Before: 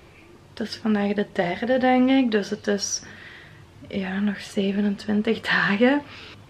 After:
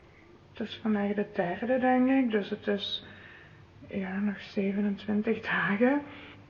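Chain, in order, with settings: nonlinear frequency compression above 1600 Hz 1.5:1; spring tank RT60 1.6 s, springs 31 ms, chirp 65 ms, DRR 19 dB; gain -6 dB

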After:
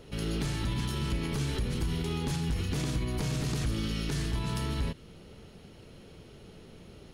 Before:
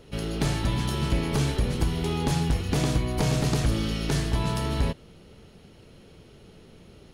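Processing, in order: limiter -23 dBFS, peak gain reduction 8 dB; dynamic EQ 680 Hz, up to -7 dB, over -52 dBFS, Q 1.4

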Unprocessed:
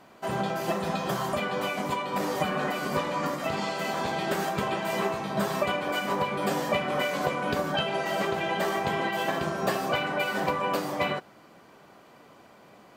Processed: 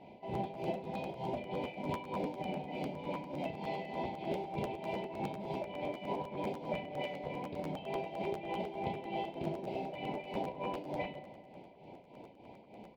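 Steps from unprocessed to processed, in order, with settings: FFT band-reject 1000–2000 Hz; compressor 5:1, threshold -36 dBFS, peak gain reduction 13 dB; tremolo triangle 3.3 Hz, depth 80%; short-mantissa float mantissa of 2-bit; air absorption 380 m; doubler 33 ms -7 dB; darkening echo 80 ms, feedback 83%, low-pass 4800 Hz, level -18 dB; crackling interface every 0.10 s, samples 512, repeat, from 0.33; gain +4 dB

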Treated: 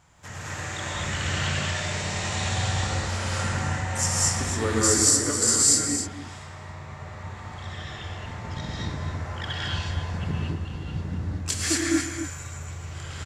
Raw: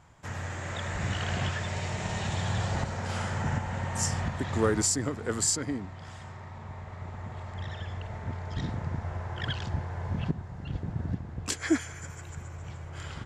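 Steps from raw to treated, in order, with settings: high shelf 2400 Hz +9 dB; on a send: tapped delay 0.118/0.268 s -12/-10 dB; on the sum: non-linear reverb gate 0.26 s rising, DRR -5 dB; gain -4 dB

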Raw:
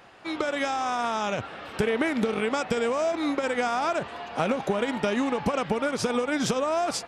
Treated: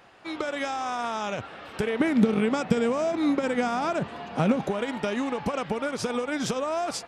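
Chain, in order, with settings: 2–4.69 bell 170 Hz +11.5 dB 1.8 oct; gain -2.5 dB

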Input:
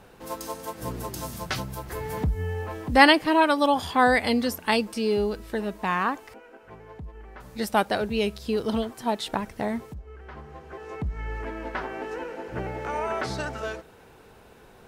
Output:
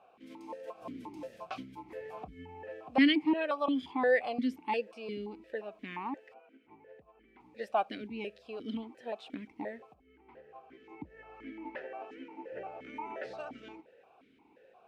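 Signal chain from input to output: vowel sequencer 5.7 Hz; gain +1 dB

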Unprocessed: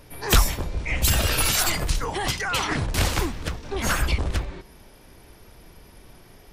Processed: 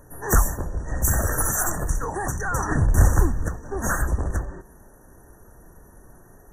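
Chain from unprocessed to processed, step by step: 2.32–3.48 low shelf 150 Hz +10.5 dB; brick-wall FIR band-stop 1900–5700 Hz

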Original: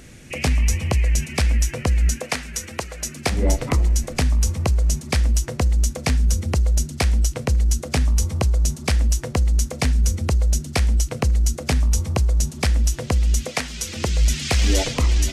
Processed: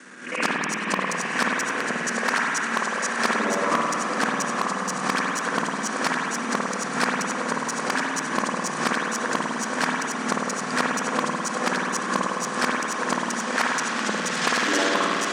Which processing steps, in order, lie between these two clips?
local time reversal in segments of 53 ms; steep low-pass 10000 Hz 96 dB/oct; band shelf 1300 Hz +13 dB 1.1 oct; on a send: diffused feedback echo 0.78 s, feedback 62%, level -9 dB; on the sum: added harmonics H 5 -14 dB, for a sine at -2.5 dBFS; steep high-pass 190 Hz 48 dB/oct; spring tank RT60 2.2 s, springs 52 ms, chirp 40 ms, DRR -2.5 dB; backwards sustainer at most 99 dB/s; gain -8 dB

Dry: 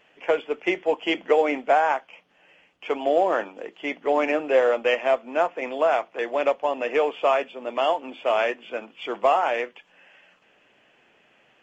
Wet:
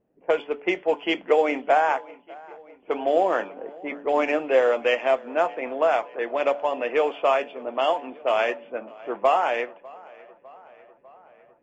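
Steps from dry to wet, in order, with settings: low-pass opened by the level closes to 320 Hz, open at -18 dBFS; de-hum 143.3 Hz, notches 7; tape echo 0.601 s, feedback 69%, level -22 dB, low-pass 3600 Hz

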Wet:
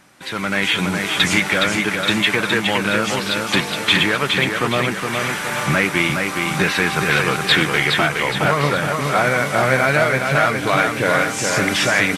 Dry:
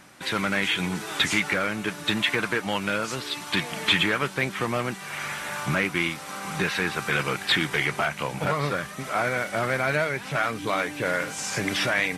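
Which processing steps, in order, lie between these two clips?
AGC gain up to 10.5 dB; feedback echo 0.416 s, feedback 46%, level -4.5 dB; gain -1 dB

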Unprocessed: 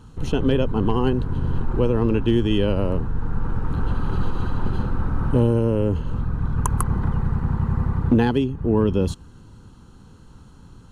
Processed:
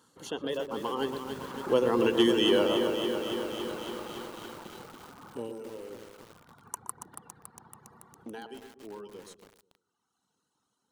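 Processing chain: Doppler pass-by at 2.29, 15 m/s, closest 7.7 m; reverb removal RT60 1.6 s; HPF 380 Hz 12 dB/oct; high shelf 4400 Hz +10.5 dB; notch 2500 Hz, Q 8.4; on a send: darkening echo 0.121 s, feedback 46%, low-pass 970 Hz, level -7 dB; on the sum: lo-fi delay 0.28 s, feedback 80%, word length 8-bit, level -7 dB; gain +3 dB

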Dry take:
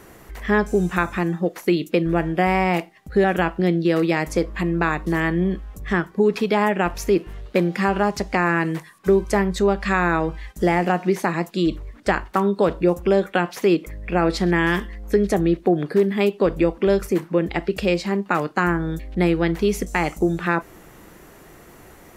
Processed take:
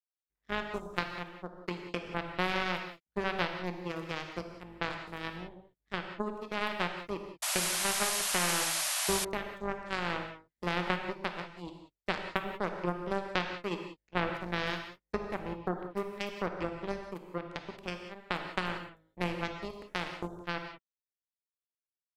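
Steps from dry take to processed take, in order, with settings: power-law curve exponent 3; non-linear reverb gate 0.21 s flat, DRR 4.5 dB; painted sound noise, 7.42–9.25, 550–12000 Hz -28 dBFS; gain -4.5 dB

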